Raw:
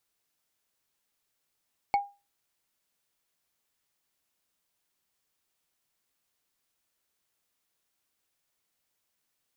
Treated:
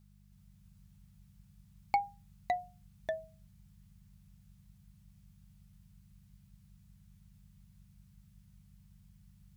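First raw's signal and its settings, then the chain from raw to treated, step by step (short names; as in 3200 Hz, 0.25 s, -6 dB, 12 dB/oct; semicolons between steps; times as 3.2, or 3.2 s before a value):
wood hit, lowest mode 807 Hz, decay 0.28 s, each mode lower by 9 dB, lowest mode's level -18 dB
buzz 50 Hz, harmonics 4, -62 dBFS -2 dB/oct; echoes that change speed 0.322 s, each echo -2 st, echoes 2; bell 410 Hz -8.5 dB 0.76 oct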